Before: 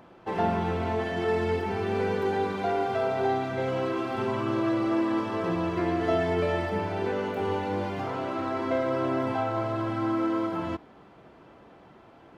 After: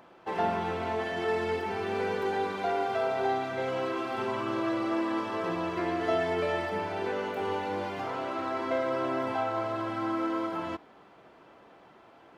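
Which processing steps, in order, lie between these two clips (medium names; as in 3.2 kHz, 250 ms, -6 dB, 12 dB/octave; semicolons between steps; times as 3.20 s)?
bass shelf 260 Hz -11.5 dB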